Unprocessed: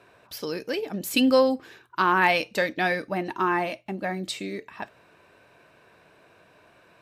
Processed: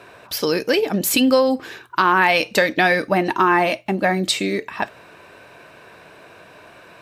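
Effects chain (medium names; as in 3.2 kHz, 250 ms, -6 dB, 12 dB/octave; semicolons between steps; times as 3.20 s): compression 10:1, threshold -23 dBFS, peak gain reduction 9.5 dB; bass shelf 320 Hz -3 dB; loudness maximiser +16 dB; trim -3.5 dB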